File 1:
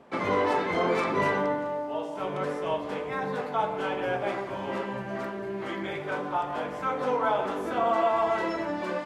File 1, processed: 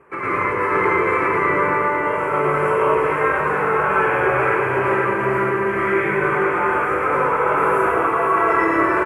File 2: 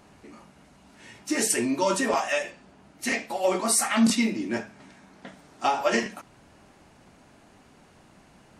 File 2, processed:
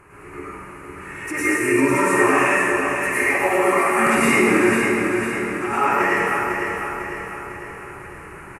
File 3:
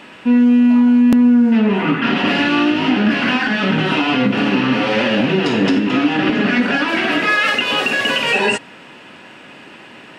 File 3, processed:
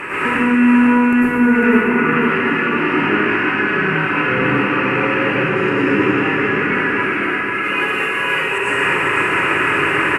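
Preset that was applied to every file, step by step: FFT filter 110 Hz 0 dB, 160 Hz -3 dB, 230 Hz -16 dB, 380 Hz +3 dB, 690 Hz -12 dB, 1.1 kHz +4 dB, 2.5 kHz +2 dB, 3.5 kHz -21 dB, 5.9 kHz -12 dB, 11 kHz +14 dB; compressor with a negative ratio -30 dBFS, ratio -1; distance through air 68 m; on a send: feedback delay 500 ms, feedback 52%, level -6 dB; on the sum: plate-style reverb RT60 1.7 s, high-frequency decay 0.95×, pre-delay 85 ms, DRR -9 dB; trim +3 dB

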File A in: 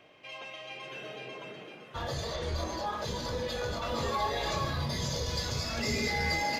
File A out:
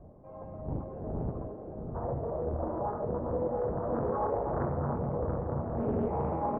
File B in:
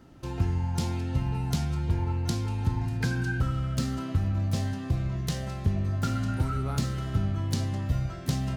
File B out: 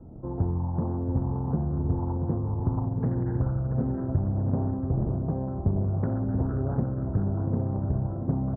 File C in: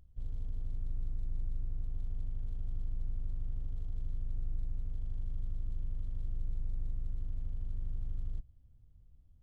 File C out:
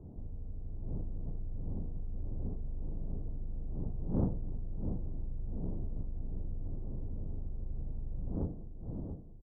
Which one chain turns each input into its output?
wind noise 140 Hz -43 dBFS; in parallel at -12 dB: decimation with a swept rate 10×, swing 60% 1.3 Hz; on the sum: Bessel low-pass 520 Hz, order 6; tilt EQ +3 dB/octave; on a send: feedback delay 684 ms, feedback 42%, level -8 dB; on the sum: loudspeaker Doppler distortion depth 0.67 ms; trim +8 dB

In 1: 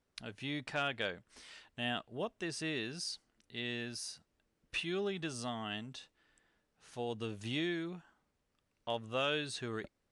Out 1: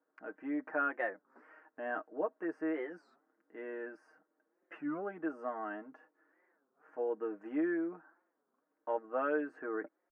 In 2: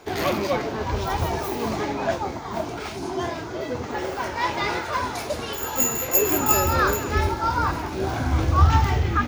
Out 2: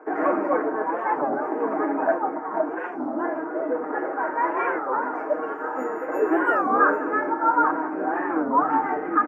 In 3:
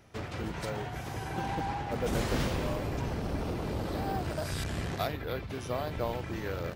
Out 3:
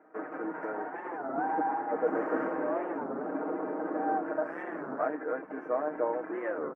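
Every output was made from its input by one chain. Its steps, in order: elliptic band-pass 260–1600 Hz, stop band 40 dB; comb 6.4 ms, depth 71%; warped record 33 1/3 rpm, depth 250 cents; trim +2 dB

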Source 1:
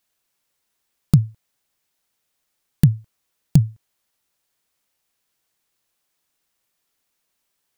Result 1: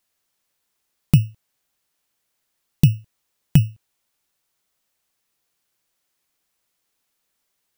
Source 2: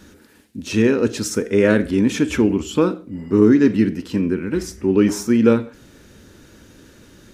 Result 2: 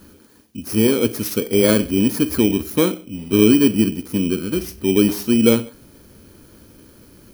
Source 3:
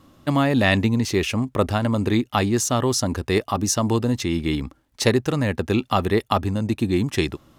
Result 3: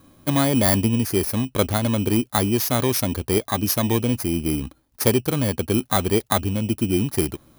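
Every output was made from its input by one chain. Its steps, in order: bit-reversed sample order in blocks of 16 samples

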